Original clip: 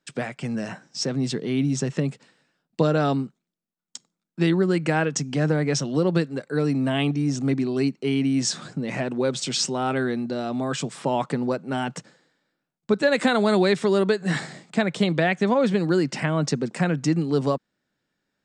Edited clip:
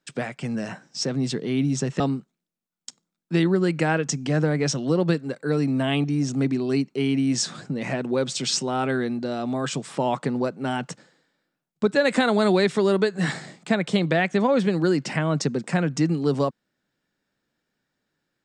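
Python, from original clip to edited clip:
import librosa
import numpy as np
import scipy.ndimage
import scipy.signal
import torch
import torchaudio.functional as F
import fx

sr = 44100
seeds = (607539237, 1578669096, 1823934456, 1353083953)

y = fx.edit(x, sr, fx.cut(start_s=2.0, length_s=1.07), tone=tone)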